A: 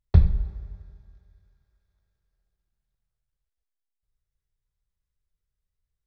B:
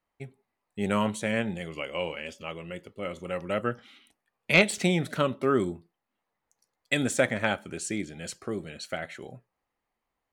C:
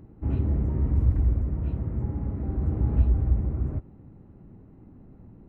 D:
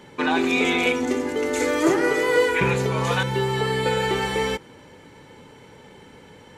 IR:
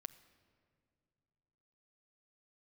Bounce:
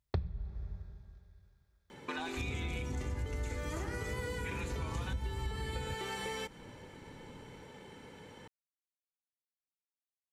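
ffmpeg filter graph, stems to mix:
-filter_complex "[0:a]highpass=53,volume=1dB[link_01];[2:a]adelay=2150,volume=-7.5dB[link_02];[3:a]acrossover=split=570|4500[link_03][link_04][link_05];[link_03]acompressor=threshold=-38dB:ratio=4[link_06];[link_04]acompressor=threshold=-33dB:ratio=4[link_07];[link_05]acompressor=threshold=-42dB:ratio=4[link_08];[link_06][link_07][link_08]amix=inputs=3:normalize=0,adelay=1900,volume=-5.5dB[link_09];[link_01][link_02][link_09]amix=inputs=3:normalize=0,acompressor=threshold=-35dB:ratio=4"

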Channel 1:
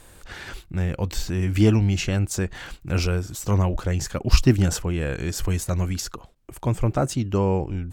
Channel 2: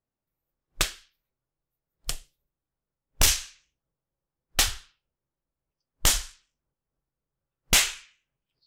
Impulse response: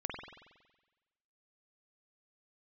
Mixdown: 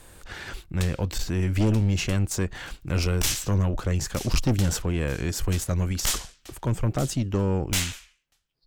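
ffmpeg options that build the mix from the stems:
-filter_complex "[0:a]volume=1dB,asplit=2[link_01][link_02];[1:a]volume=0dB,asplit=2[link_03][link_04];[link_04]volume=-15dB[link_05];[link_02]apad=whole_len=382172[link_06];[link_03][link_06]sidechaincompress=threshold=-25dB:ratio=5:attack=8.3:release=181[link_07];[link_05]aecho=0:1:933|1866|2799|3732:1|0.3|0.09|0.027[link_08];[link_01][link_07][link_08]amix=inputs=3:normalize=0,acrossover=split=350|3000[link_09][link_10][link_11];[link_10]acompressor=threshold=-26dB:ratio=6[link_12];[link_09][link_12][link_11]amix=inputs=3:normalize=0,aeval=exprs='(tanh(7.08*val(0)+0.4)-tanh(0.4))/7.08':channel_layout=same"

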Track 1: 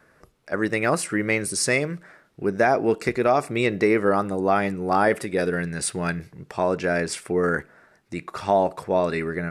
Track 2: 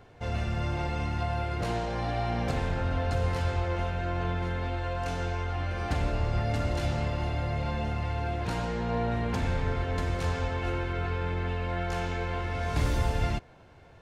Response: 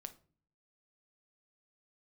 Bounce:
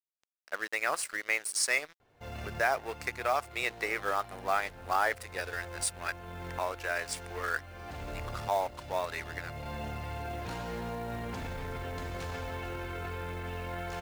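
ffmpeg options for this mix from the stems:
-filter_complex "[0:a]highpass=820,aeval=exprs='sgn(val(0))*max(abs(val(0))-0.0119,0)':channel_layout=same,volume=-3.5dB,asplit=2[link_01][link_02];[1:a]alimiter=level_in=1dB:limit=-24dB:level=0:latency=1:release=11,volume=-1dB,adelay=2000,volume=-3dB[link_03];[link_02]apad=whole_len=706301[link_04];[link_03][link_04]sidechaincompress=threshold=-34dB:ratio=16:attack=6.2:release=738[link_05];[link_01][link_05]amix=inputs=2:normalize=0,lowshelf=frequency=250:gain=-5,acrusher=bits=5:mode=log:mix=0:aa=0.000001"

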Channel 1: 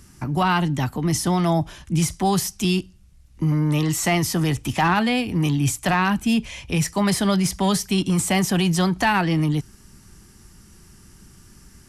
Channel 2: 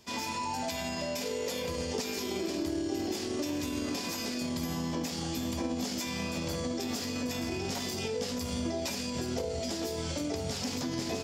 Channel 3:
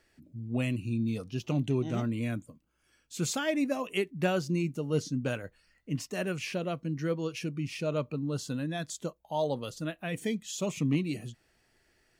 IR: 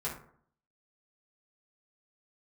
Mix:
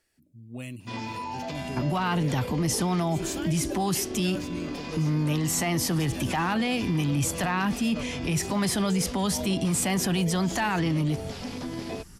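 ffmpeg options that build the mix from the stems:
-filter_complex "[0:a]adelay=1550,volume=-0.5dB[link_01];[1:a]lowpass=3600,adelay=800,volume=0dB[link_02];[2:a]equalizer=frequency=12000:width=0.42:gain=11.5,volume=-8dB[link_03];[link_01][link_02][link_03]amix=inputs=3:normalize=0,alimiter=limit=-18.5dB:level=0:latency=1:release=36"

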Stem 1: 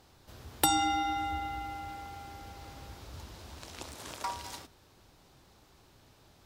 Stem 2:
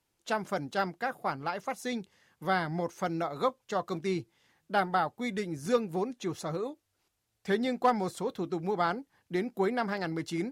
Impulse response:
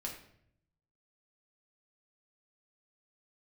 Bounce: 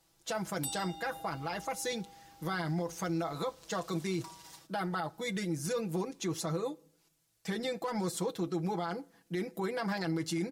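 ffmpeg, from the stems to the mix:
-filter_complex "[0:a]acrossover=split=120|3000[link_01][link_02][link_03];[link_02]acompressor=threshold=-36dB:ratio=6[link_04];[link_01][link_04][link_03]amix=inputs=3:normalize=0,volume=-14.5dB[link_05];[1:a]alimiter=level_in=0.5dB:limit=-24dB:level=0:latency=1:release=42,volume=-0.5dB,volume=-2dB,asplit=2[link_06][link_07];[link_07]volume=-18dB[link_08];[2:a]atrim=start_sample=2205[link_09];[link_08][link_09]afir=irnorm=-1:irlink=0[link_10];[link_05][link_06][link_10]amix=inputs=3:normalize=0,bass=frequency=250:gain=0,treble=frequency=4000:gain=7,aecho=1:1:6.1:0.83,alimiter=level_in=1.5dB:limit=-24dB:level=0:latency=1:release=26,volume=-1.5dB"

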